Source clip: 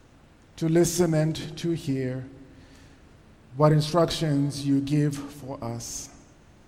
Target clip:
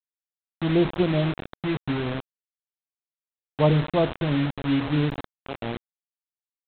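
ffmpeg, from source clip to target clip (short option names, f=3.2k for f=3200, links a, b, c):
-af "lowpass=f=1k:w=0.5412,lowpass=f=1k:w=1.3066,aresample=8000,acrusher=bits=4:mix=0:aa=0.000001,aresample=44100"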